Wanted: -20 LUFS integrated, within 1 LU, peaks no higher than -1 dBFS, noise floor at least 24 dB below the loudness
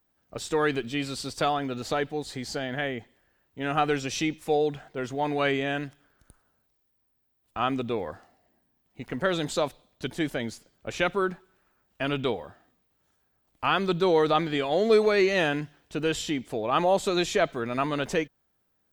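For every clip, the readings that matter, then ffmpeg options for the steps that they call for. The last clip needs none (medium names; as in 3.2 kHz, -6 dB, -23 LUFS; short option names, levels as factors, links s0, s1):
loudness -27.5 LUFS; peak level -9.5 dBFS; loudness target -20.0 LUFS
-> -af "volume=2.37"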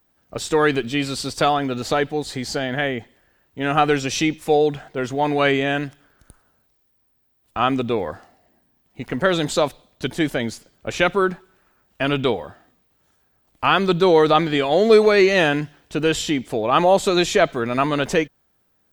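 loudness -20.0 LUFS; peak level -2.0 dBFS; noise floor -66 dBFS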